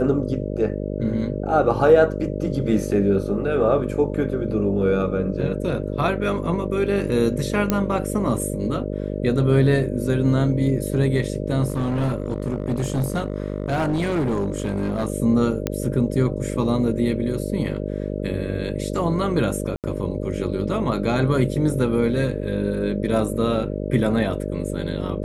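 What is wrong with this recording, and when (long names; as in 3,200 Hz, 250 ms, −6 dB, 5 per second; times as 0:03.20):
mains buzz 50 Hz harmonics 12 −27 dBFS
0:07.70: click −6 dBFS
0:11.68–0:15.08: clipping −18 dBFS
0:15.67: click −8 dBFS
0:19.76–0:19.84: drop-out 78 ms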